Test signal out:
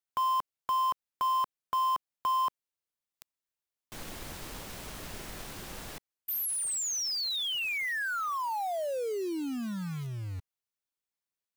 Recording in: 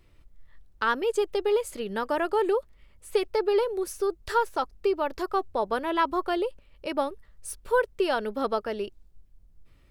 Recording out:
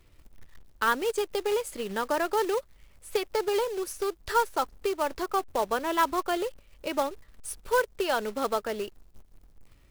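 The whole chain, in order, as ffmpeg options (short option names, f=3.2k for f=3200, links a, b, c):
-filter_complex "[0:a]acrossover=split=460[a][b];[a]acompressor=threshold=-34dB:ratio=6[c];[c][b]amix=inputs=2:normalize=0,acrusher=bits=3:mode=log:mix=0:aa=0.000001"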